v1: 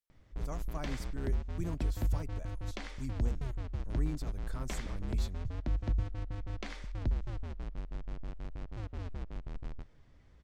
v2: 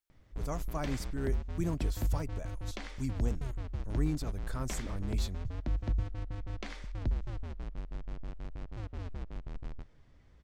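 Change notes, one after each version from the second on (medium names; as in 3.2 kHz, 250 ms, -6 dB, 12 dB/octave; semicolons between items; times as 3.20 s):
speech +5.5 dB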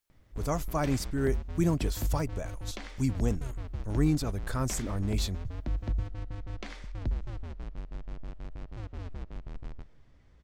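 speech +7.5 dB; background: send +6.5 dB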